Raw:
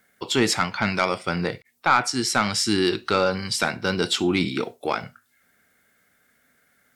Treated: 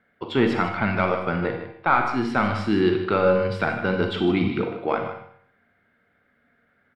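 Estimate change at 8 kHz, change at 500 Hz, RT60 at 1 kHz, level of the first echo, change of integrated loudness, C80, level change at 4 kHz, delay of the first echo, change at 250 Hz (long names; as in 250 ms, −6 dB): below −25 dB, +3.0 dB, 0.65 s, −11.0 dB, 0.0 dB, 7.5 dB, −10.0 dB, 153 ms, +2.0 dB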